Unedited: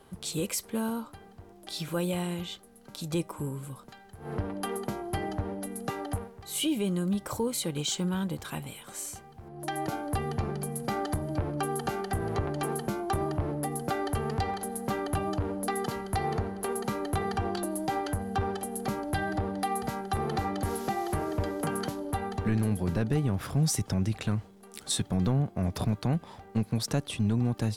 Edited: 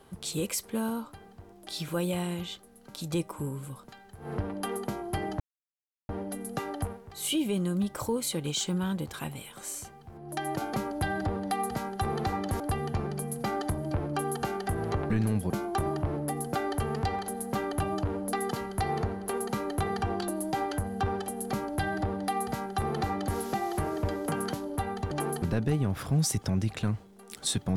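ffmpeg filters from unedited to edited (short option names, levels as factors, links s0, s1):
-filter_complex "[0:a]asplit=8[s0][s1][s2][s3][s4][s5][s6][s7];[s0]atrim=end=5.4,asetpts=PTS-STARTPTS,afade=t=out:st=5.396:d=0.004:c=hsin,apad=pad_dur=0.69[s8];[s1]atrim=start=5.4:end=10.042,asetpts=PTS-STARTPTS,afade=t=in:d=0.004:c=hsin[s9];[s2]atrim=start=18.848:end=20.722[s10];[s3]atrim=start=10.038:end=12.542[s11];[s4]atrim=start=22.458:end=22.862[s12];[s5]atrim=start=12.848:end=22.462[s13];[s6]atrim=start=12.538:end=12.852[s14];[s7]atrim=start=22.858[s15];[s8][s9]concat=n=2:v=0:a=1[s16];[s16][s10]acrossfade=d=0.004:c1=hsin:c2=hsin[s17];[s17][s11]acrossfade=d=0.004:c1=hsin:c2=hsin[s18];[s18][s12]acrossfade=d=0.004:c1=hsin:c2=hsin[s19];[s19][s13]acrossfade=d=0.004:c1=hsin:c2=hsin[s20];[s20][s14]acrossfade=d=0.004:c1=hsin:c2=hsin[s21];[s21][s15]acrossfade=d=0.004:c1=hsin:c2=hsin"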